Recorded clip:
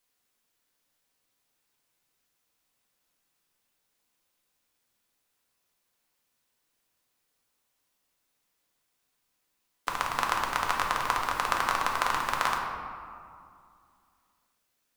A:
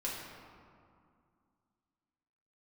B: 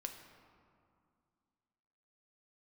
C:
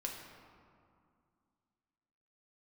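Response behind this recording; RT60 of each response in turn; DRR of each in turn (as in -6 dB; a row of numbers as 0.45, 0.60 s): C; 2.3, 2.3, 2.3 s; -5.5, 4.0, -0.5 dB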